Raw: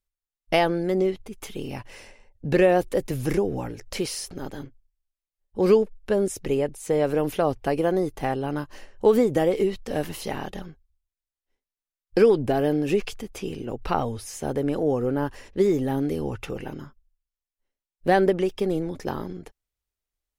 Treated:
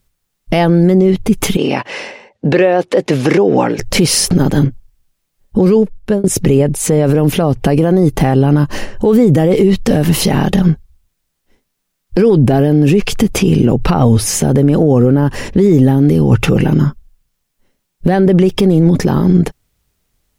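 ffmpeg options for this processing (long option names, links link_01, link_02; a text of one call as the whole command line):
ffmpeg -i in.wav -filter_complex "[0:a]asettb=1/sr,asplit=3[link_01][link_02][link_03];[link_01]atrim=end=1.574[link_04];[link_02]atrim=start=1.57:end=3.79,asetpts=PTS-STARTPTS,afade=type=in:duration=0.004:curve=qsin,afade=type=out:start_time=2.216:duration=0.004:curve=qsin,highpass=420,lowpass=4600[link_05];[link_03]atrim=start=3.786[link_06];[link_04][link_05]acrossfade=duration=0.004:curve1=hsin:curve2=qsin[link_07];[link_07][link_06]acrossfade=duration=0.004:curve1=qsin:curve2=hsin,asplit=2[link_08][link_09];[link_08]atrim=end=6.24,asetpts=PTS-STARTPTS,afade=type=out:start_time=5.62:duration=0.62[link_10];[link_09]atrim=start=6.24,asetpts=PTS-STARTPTS,afade=type=in:duration=0.004:curve=hsin[link_11];[link_10][link_11]concat=n=2:v=0:a=1,equalizer=frequency=160:width_type=o:width=1.5:gain=12.5,acompressor=threshold=-22dB:ratio=6,alimiter=level_in=22.5dB:limit=-1dB:release=50:level=0:latency=1,volume=-1dB" out.wav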